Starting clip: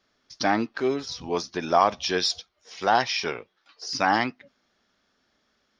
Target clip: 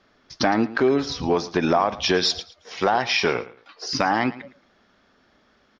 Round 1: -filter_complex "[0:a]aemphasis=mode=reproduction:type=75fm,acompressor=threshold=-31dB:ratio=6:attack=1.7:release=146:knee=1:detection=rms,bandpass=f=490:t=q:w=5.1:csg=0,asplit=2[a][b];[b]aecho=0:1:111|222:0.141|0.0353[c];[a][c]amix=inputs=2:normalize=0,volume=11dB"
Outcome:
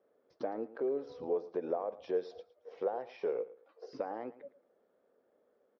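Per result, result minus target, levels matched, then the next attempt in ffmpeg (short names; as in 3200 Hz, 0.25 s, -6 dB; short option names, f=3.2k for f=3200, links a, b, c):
compressor: peak gain reduction +6 dB; 500 Hz band +4.5 dB
-filter_complex "[0:a]aemphasis=mode=reproduction:type=75fm,acompressor=threshold=-24dB:ratio=6:attack=1.7:release=146:knee=1:detection=rms,bandpass=f=490:t=q:w=5.1:csg=0,asplit=2[a][b];[b]aecho=0:1:111|222:0.141|0.0353[c];[a][c]amix=inputs=2:normalize=0,volume=11dB"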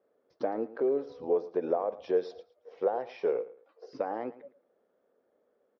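500 Hz band +4.5 dB
-filter_complex "[0:a]aemphasis=mode=reproduction:type=75fm,acompressor=threshold=-24dB:ratio=6:attack=1.7:release=146:knee=1:detection=rms,asplit=2[a][b];[b]aecho=0:1:111|222:0.141|0.0353[c];[a][c]amix=inputs=2:normalize=0,volume=11dB"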